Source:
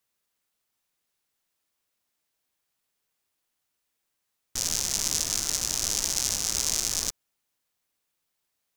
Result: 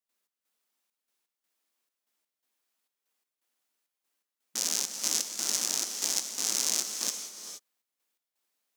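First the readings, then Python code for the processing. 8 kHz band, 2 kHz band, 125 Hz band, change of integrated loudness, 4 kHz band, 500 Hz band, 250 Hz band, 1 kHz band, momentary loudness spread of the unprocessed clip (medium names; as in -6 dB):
-2.5 dB, -2.5 dB, under -15 dB, -3.0 dB, -2.5 dB, -2.5 dB, -3.5 dB, -2.5 dB, 4 LU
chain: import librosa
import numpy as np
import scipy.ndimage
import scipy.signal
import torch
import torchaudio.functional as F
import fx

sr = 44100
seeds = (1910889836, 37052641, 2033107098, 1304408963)

y = fx.step_gate(x, sr, bpm=167, pattern='.xx..xxxxx.', floor_db=-12.0, edge_ms=4.5)
y = fx.brickwall_highpass(y, sr, low_hz=180.0)
y = fx.rev_gated(y, sr, seeds[0], gate_ms=500, shape='rising', drr_db=8.0)
y = y * 10.0 ** (-1.5 / 20.0)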